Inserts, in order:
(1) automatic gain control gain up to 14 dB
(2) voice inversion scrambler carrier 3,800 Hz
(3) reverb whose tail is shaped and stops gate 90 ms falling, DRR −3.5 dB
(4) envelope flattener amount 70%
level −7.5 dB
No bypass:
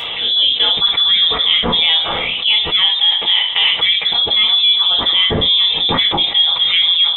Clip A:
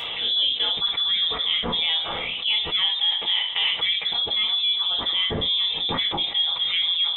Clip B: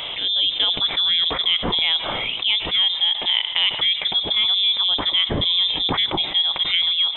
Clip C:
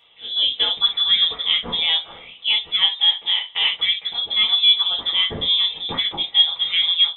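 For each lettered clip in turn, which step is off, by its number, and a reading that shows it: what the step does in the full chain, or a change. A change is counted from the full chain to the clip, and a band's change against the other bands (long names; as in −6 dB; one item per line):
1, change in integrated loudness −9.5 LU
3, 250 Hz band +1.5 dB
4, change in crest factor +3.5 dB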